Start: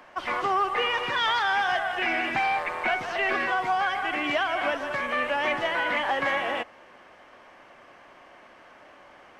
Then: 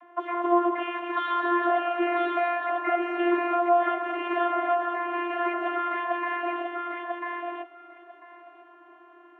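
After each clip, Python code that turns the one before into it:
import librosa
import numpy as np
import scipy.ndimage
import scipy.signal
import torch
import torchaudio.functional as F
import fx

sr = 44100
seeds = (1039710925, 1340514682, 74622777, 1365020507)

y = scipy.signal.lfilter(np.full(9, 1.0 / 9), 1.0, x)
y = fx.vocoder(y, sr, bands=32, carrier='saw', carrier_hz=348.0)
y = fx.echo_feedback(y, sr, ms=995, feedback_pct=15, wet_db=-3.5)
y = F.gain(torch.from_numpy(y), 2.0).numpy()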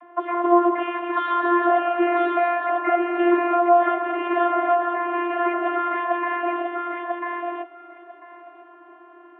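y = fx.lowpass(x, sr, hz=1800.0, slope=6)
y = F.gain(torch.from_numpy(y), 6.0).numpy()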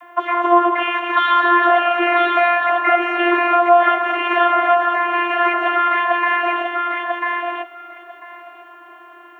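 y = fx.tilt_eq(x, sr, slope=5.0)
y = F.gain(torch.from_numpy(y), 6.5).numpy()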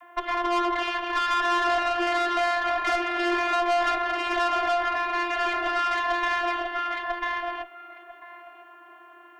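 y = fx.tube_stage(x, sr, drive_db=16.0, bias=0.65)
y = F.gain(torch.from_numpy(y), -4.0).numpy()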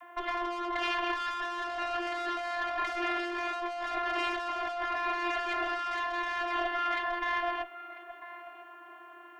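y = fx.over_compress(x, sr, threshold_db=-29.0, ratio=-1.0)
y = F.gain(torch.from_numpy(y), -4.0).numpy()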